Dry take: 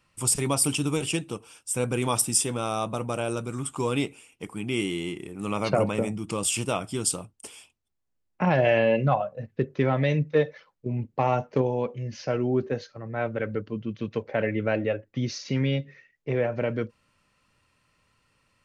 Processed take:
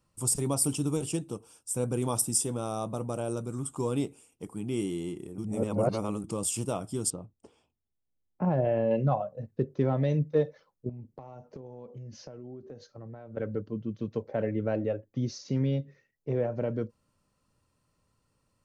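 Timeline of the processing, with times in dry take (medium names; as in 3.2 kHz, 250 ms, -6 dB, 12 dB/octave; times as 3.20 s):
5.38–6.24 s: reverse
7.10–8.91 s: tape spacing loss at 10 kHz 31 dB
10.89–13.37 s: compression 20:1, threshold -36 dBFS
whole clip: peaking EQ 2.3 kHz -14.5 dB 1.7 oct; trim -2 dB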